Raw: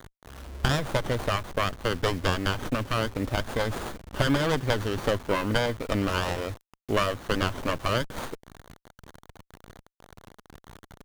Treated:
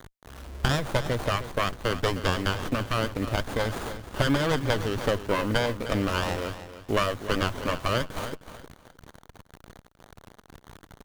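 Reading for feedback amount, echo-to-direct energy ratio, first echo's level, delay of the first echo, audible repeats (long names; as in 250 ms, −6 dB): 23%, −12.5 dB, −12.5 dB, 310 ms, 2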